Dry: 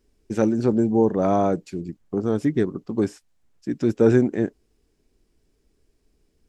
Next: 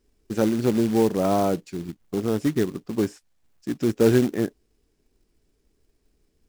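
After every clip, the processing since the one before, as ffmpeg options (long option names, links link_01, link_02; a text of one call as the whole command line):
ffmpeg -i in.wav -af "acrusher=bits=4:mode=log:mix=0:aa=0.000001,volume=-1.5dB" out.wav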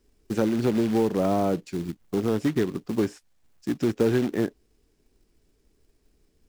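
ffmpeg -i in.wav -filter_complex "[0:a]acrossover=split=490|4500[link_01][link_02][link_03];[link_01]acompressor=threshold=-22dB:ratio=4[link_04];[link_02]acompressor=threshold=-28dB:ratio=4[link_05];[link_03]acompressor=threshold=-48dB:ratio=4[link_06];[link_04][link_05][link_06]amix=inputs=3:normalize=0,asplit=2[link_07][link_08];[link_08]asoftclip=type=hard:threshold=-27dB,volume=-11.5dB[link_09];[link_07][link_09]amix=inputs=2:normalize=0" out.wav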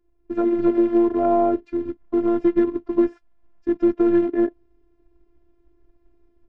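ffmpeg -i in.wav -af "lowpass=1300,dynaudnorm=framelen=230:gausssize=3:maxgain=8dB,afftfilt=real='hypot(re,im)*cos(PI*b)':imag='0':win_size=512:overlap=0.75,volume=1dB" out.wav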